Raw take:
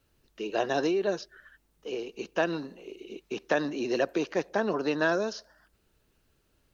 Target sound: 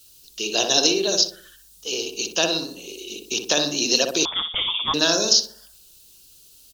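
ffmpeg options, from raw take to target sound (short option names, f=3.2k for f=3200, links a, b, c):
-filter_complex "[0:a]aexciter=amount=14.4:drive=5.2:freq=3k,asplit=2[a][b];[b]adelay=61,lowpass=f=1.1k:p=1,volume=-3dB,asplit=2[c][d];[d]adelay=61,lowpass=f=1.1k:p=1,volume=0.49,asplit=2[e][f];[f]adelay=61,lowpass=f=1.1k:p=1,volume=0.49,asplit=2[g][h];[h]adelay=61,lowpass=f=1.1k:p=1,volume=0.49,asplit=2[i][j];[j]adelay=61,lowpass=f=1.1k:p=1,volume=0.49,asplit=2[k][l];[l]adelay=61,lowpass=f=1.1k:p=1,volume=0.49[m];[a][c][e][g][i][k][m]amix=inputs=7:normalize=0,asettb=1/sr,asplit=3[n][o][p];[n]atrim=end=4.254[q];[o]atrim=start=4.25:end=4.94,asetpts=PTS-STARTPTS,afade=t=in:d=0.004:c=qsin,afade=t=out:st=0.686:d=0.004:c=qsin,lowpass=f=3.2k:t=q:w=0.5098,lowpass=f=3.2k:t=q:w=0.6013,lowpass=f=3.2k:t=q:w=0.9,lowpass=f=3.2k:t=q:w=2.563,afreqshift=-3800[r];[p]atrim=start=4.936[s];[q][r]acrossfade=d=0.004:c1=hsin:c2=qsin[t];[t][s]acrossfade=d=0.004:c1=qsin:c2=hsin,volume=1.5dB"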